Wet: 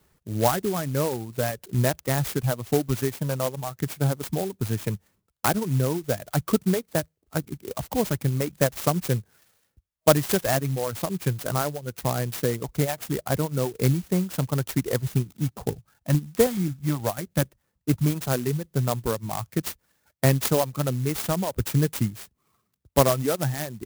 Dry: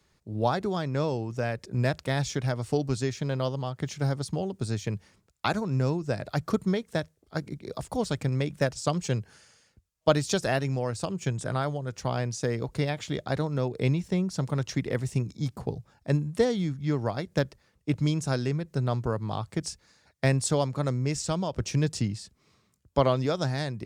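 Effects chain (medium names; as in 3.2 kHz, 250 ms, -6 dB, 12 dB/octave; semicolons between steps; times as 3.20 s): reverb removal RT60 1.3 s; 15.72–18.10 s: LFO notch square 4.7 Hz 420–5000 Hz; sampling jitter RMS 0.084 ms; trim +4.5 dB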